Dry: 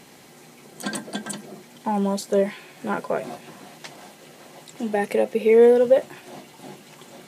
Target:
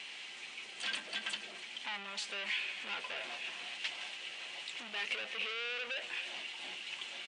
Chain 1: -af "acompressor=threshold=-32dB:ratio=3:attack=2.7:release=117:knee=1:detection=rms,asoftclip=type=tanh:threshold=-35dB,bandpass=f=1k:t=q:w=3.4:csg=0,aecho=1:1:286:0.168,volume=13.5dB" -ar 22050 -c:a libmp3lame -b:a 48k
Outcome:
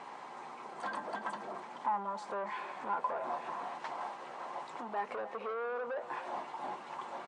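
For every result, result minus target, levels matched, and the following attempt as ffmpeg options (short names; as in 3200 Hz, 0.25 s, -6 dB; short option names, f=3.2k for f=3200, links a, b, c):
1000 Hz band +14.5 dB; compressor: peak gain reduction +7.5 dB
-af "acompressor=threshold=-32dB:ratio=3:attack=2.7:release=117:knee=1:detection=rms,asoftclip=type=tanh:threshold=-35dB,bandpass=f=2.8k:t=q:w=3.4:csg=0,aecho=1:1:286:0.168,volume=13.5dB" -ar 22050 -c:a libmp3lame -b:a 48k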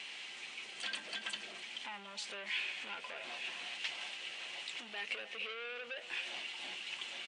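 compressor: peak gain reduction +7.5 dB
-af "acompressor=threshold=-20.5dB:ratio=3:attack=2.7:release=117:knee=1:detection=rms,asoftclip=type=tanh:threshold=-35dB,bandpass=f=2.8k:t=q:w=3.4:csg=0,aecho=1:1:286:0.168,volume=13.5dB" -ar 22050 -c:a libmp3lame -b:a 48k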